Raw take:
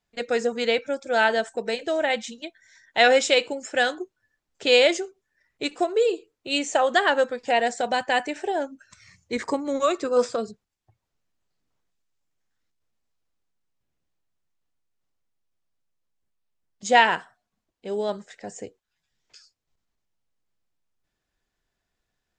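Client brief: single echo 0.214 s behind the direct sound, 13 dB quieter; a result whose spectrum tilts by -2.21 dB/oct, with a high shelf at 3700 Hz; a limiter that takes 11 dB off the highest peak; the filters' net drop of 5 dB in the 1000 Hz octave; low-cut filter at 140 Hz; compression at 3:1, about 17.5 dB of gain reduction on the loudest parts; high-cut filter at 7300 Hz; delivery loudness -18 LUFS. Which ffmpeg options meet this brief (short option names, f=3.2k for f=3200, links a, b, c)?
-af "highpass=140,lowpass=7.3k,equalizer=f=1k:t=o:g=-8,highshelf=f=3.7k:g=4,acompressor=threshold=-39dB:ratio=3,alimiter=level_in=8dB:limit=-24dB:level=0:latency=1,volume=-8dB,aecho=1:1:214:0.224,volume=24.5dB"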